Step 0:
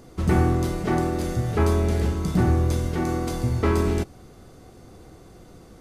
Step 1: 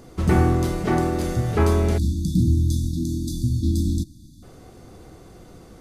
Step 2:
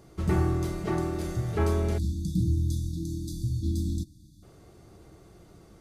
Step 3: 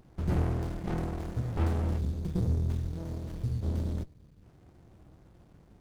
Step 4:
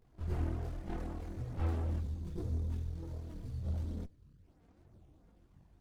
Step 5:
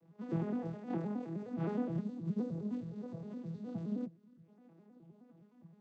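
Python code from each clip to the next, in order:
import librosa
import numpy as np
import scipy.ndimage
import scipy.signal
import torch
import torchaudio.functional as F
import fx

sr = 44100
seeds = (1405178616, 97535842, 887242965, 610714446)

y1 = fx.spec_erase(x, sr, start_s=1.98, length_s=2.45, low_hz=330.0, high_hz=3400.0)
y1 = y1 * librosa.db_to_amplitude(2.0)
y2 = fx.notch_comb(y1, sr, f0_hz=250.0)
y2 = y2 * librosa.db_to_amplitude(-6.5)
y3 = fx.running_max(y2, sr, window=65)
y3 = y3 * librosa.db_to_amplitude(-2.0)
y4 = fx.chorus_voices(y3, sr, voices=4, hz=0.78, base_ms=22, depth_ms=2.2, mix_pct=65)
y4 = y4 * librosa.db_to_amplitude(-6.0)
y5 = fx.vocoder_arp(y4, sr, chord='major triad', root=52, every_ms=104)
y5 = y5 * librosa.db_to_amplitude(7.0)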